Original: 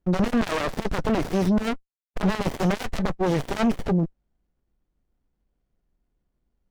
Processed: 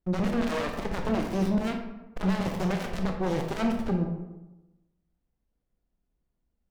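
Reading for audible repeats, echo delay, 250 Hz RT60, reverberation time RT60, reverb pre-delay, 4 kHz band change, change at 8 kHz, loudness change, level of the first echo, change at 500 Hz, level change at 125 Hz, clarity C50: none, none, 1.2 s, 1.0 s, 21 ms, -5.0 dB, -5.5 dB, -4.0 dB, none, -4.5 dB, -4.0 dB, 4.5 dB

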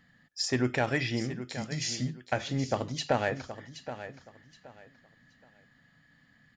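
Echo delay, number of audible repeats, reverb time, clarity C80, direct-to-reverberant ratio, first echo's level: 0.773 s, 2, none, none, none, -12.0 dB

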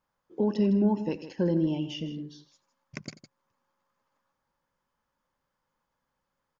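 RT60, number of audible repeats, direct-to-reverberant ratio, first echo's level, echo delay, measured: none, 2, none, -17.0 dB, 88 ms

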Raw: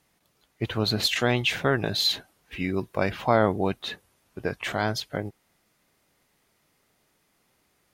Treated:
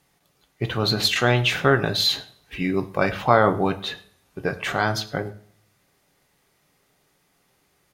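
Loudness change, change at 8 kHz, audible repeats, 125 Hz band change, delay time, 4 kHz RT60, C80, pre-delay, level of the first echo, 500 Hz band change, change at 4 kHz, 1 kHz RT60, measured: +4.0 dB, +3.0 dB, 1, +4.5 dB, 0.105 s, 0.50 s, 19.0 dB, 3 ms, -23.5 dB, +4.0 dB, +3.5 dB, 0.55 s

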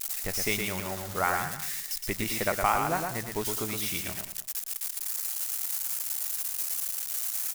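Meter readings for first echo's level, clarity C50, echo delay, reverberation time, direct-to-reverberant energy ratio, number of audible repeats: -5.0 dB, none, 0.114 s, none, none, 3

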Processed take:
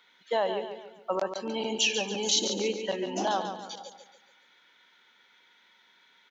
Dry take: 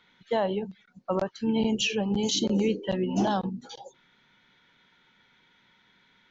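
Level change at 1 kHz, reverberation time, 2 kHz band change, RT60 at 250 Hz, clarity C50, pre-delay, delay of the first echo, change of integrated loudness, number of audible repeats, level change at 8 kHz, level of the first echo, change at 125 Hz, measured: +0.5 dB, none, +1.5 dB, none, none, none, 0.142 s, -2.0 dB, 4, n/a, -8.0 dB, -12.5 dB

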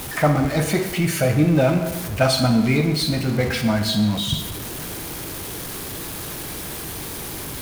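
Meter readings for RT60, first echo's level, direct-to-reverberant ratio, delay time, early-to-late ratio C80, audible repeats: 1.1 s, none, 6.5 dB, none, 9.0 dB, none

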